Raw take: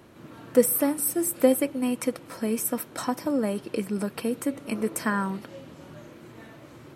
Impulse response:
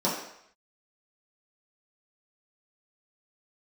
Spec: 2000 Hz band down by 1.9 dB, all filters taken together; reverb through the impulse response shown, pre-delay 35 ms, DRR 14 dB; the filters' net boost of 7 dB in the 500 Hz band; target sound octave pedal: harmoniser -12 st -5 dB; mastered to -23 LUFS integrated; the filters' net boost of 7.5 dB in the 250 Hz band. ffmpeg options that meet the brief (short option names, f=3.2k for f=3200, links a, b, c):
-filter_complex "[0:a]equalizer=f=250:t=o:g=7,equalizer=f=500:t=o:g=6,equalizer=f=2k:t=o:g=-3,asplit=2[a][b];[1:a]atrim=start_sample=2205,adelay=35[c];[b][c]afir=irnorm=-1:irlink=0,volume=-26dB[d];[a][d]amix=inputs=2:normalize=0,asplit=2[e][f];[f]asetrate=22050,aresample=44100,atempo=2,volume=-5dB[g];[e][g]amix=inputs=2:normalize=0,volume=-3.5dB"